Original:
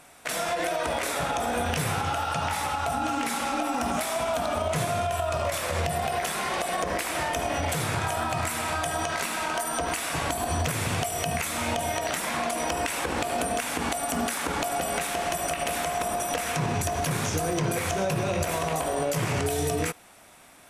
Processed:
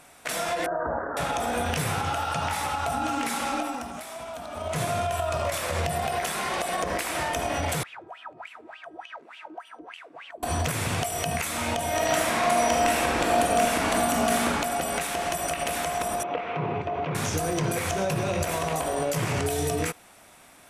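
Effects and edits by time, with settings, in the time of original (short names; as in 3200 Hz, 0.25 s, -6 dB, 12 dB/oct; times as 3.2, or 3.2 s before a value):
0.66–1.17 steep low-pass 1700 Hz 96 dB/oct
3.55–4.85 dip -10 dB, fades 0.33 s
7.83–10.43 wah 3.4 Hz 310–3100 Hz, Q 11
11.87–14.46 reverb throw, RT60 1.6 s, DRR -2 dB
16.23–17.15 speaker cabinet 140–2600 Hz, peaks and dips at 230 Hz -6 dB, 410 Hz +5 dB, 1700 Hz -9 dB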